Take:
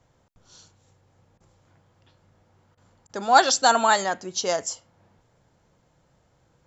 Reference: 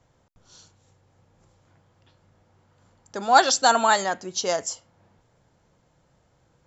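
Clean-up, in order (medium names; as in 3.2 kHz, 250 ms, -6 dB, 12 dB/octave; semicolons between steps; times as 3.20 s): interpolate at 1.38/2.75/3.07 s, 22 ms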